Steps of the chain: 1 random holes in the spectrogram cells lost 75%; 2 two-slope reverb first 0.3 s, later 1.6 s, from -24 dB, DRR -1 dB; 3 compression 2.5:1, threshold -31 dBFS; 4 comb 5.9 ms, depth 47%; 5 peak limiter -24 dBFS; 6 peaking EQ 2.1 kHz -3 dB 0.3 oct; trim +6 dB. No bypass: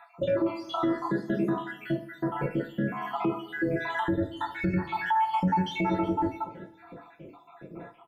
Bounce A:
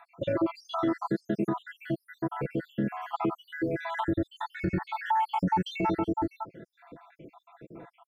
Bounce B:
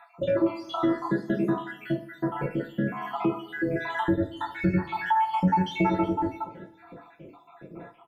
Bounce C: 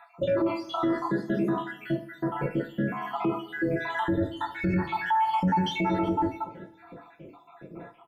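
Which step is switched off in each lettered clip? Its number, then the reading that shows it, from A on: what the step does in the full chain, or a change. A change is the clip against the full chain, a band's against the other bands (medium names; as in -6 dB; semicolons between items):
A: 2, momentary loudness spread change -9 LU; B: 5, crest factor change +4.5 dB; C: 3, momentary loudness spread change -5 LU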